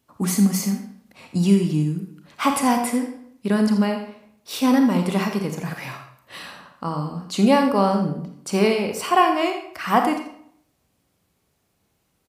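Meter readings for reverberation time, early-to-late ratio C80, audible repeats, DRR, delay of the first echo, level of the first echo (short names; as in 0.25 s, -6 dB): 0.65 s, 9.0 dB, 1, 4.0 dB, 84 ms, -12.5 dB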